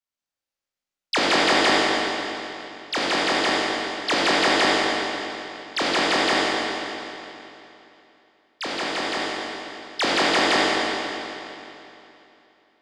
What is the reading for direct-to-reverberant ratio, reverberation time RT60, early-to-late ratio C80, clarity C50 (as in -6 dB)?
-7.0 dB, 3.0 s, -3.0 dB, -4.5 dB